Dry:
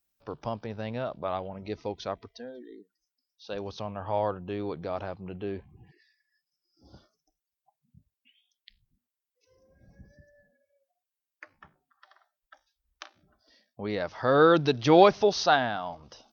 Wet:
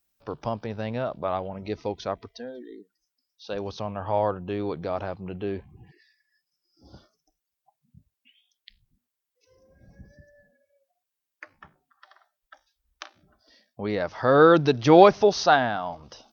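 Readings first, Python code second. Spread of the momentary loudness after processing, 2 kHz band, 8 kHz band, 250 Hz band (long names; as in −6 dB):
20 LU, +3.0 dB, can't be measured, +4.0 dB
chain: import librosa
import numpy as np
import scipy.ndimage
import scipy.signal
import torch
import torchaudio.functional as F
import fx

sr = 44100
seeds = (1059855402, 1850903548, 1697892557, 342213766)

y = fx.dynamic_eq(x, sr, hz=3600.0, q=1.1, threshold_db=-46.0, ratio=4.0, max_db=-4)
y = F.gain(torch.from_numpy(y), 4.0).numpy()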